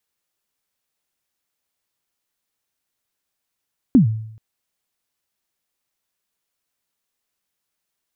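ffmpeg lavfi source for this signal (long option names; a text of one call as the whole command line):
ffmpeg -f lavfi -i "aevalsrc='0.531*pow(10,-3*t/0.71)*sin(2*PI*(290*0.114/log(110/290)*(exp(log(110/290)*min(t,0.114)/0.114)-1)+110*max(t-0.114,0)))':duration=0.43:sample_rate=44100" out.wav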